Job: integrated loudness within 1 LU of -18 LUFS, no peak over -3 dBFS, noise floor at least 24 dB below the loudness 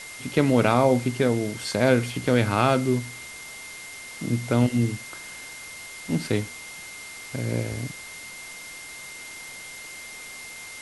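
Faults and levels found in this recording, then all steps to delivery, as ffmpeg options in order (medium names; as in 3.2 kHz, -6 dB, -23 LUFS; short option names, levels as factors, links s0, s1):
steady tone 2.1 kHz; tone level -40 dBFS; noise floor -40 dBFS; noise floor target -48 dBFS; loudness -24.0 LUFS; peak level -5.0 dBFS; loudness target -18.0 LUFS
-> -af "bandreject=f=2100:w=30"
-af "afftdn=nr=8:nf=-40"
-af "volume=2,alimiter=limit=0.708:level=0:latency=1"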